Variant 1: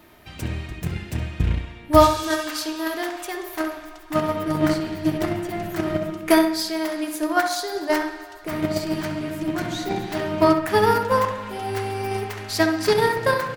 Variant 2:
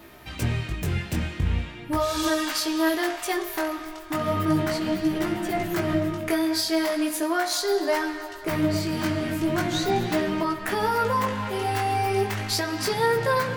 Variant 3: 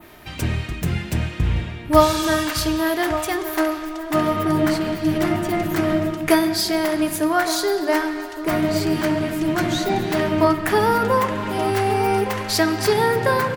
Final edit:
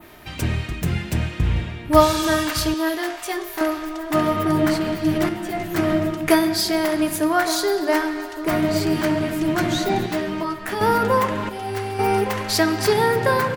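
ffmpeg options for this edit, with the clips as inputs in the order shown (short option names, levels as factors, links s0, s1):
-filter_complex "[1:a]asplit=3[s0][s1][s2];[2:a]asplit=5[s3][s4][s5][s6][s7];[s3]atrim=end=2.742[s8];[s0]atrim=start=2.738:end=3.612[s9];[s4]atrim=start=3.608:end=5.292[s10];[s1]atrim=start=5.288:end=5.752[s11];[s5]atrim=start=5.748:end=10.062[s12];[s2]atrim=start=10.058:end=10.812[s13];[s6]atrim=start=10.808:end=11.492[s14];[0:a]atrim=start=11.488:end=11.992[s15];[s7]atrim=start=11.988[s16];[s8][s9]acrossfade=d=0.004:c1=hsin:c2=hsin[s17];[s17][s10]acrossfade=d=0.004:c1=hsin:c2=hsin[s18];[s18][s11]acrossfade=d=0.004:c1=hsin:c2=hsin[s19];[s19][s12]acrossfade=d=0.004:c1=hsin:c2=hsin[s20];[s20][s13]acrossfade=d=0.004:c1=hsin:c2=hsin[s21];[s21][s14]acrossfade=d=0.004:c1=hsin:c2=hsin[s22];[s22][s15]acrossfade=d=0.004:c1=hsin:c2=hsin[s23];[s23][s16]acrossfade=d=0.004:c1=hsin:c2=hsin"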